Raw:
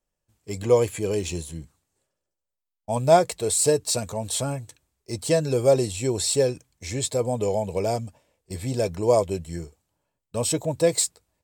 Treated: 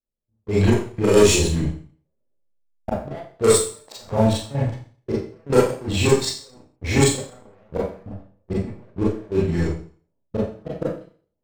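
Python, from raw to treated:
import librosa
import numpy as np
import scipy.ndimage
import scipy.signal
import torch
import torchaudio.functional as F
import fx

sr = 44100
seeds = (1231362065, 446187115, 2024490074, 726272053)

y = fx.recorder_agc(x, sr, target_db=-9.5, rise_db_per_s=5.6, max_gain_db=30)
y = fx.gate_flip(y, sr, shuts_db=-12.0, range_db=-31)
y = fx.level_steps(y, sr, step_db=11)
y = fx.env_lowpass(y, sr, base_hz=440.0, full_db=-25.0)
y = fx.leveller(y, sr, passes=3)
y = fx.rev_schroeder(y, sr, rt60_s=0.44, comb_ms=28, drr_db=-7.0)
y = F.gain(torch.from_numpy(y), -1.0).numpy()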